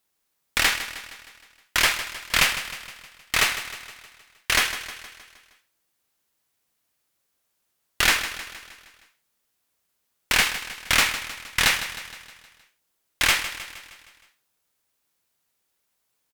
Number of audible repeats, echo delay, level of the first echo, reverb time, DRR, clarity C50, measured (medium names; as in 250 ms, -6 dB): 5, 156 ms, -12.0 dB, no reverb, no reverb, no reverb